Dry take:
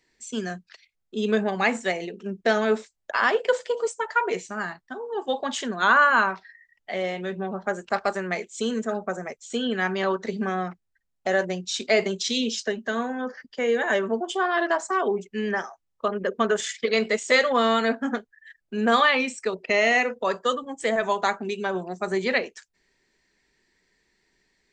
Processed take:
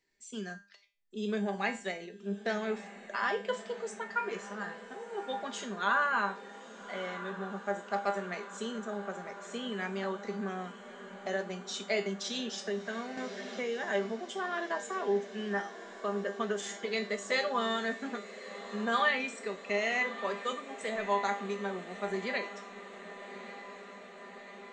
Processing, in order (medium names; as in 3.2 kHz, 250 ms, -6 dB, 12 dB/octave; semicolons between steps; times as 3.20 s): feedback comb 200 Hz, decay 0.36 s, harmonics all, mix 80%; echo that smears into a reverb 1219 ms, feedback 71%, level -14 dB; 13.17–13.84 s: three bands compressed up and down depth 70%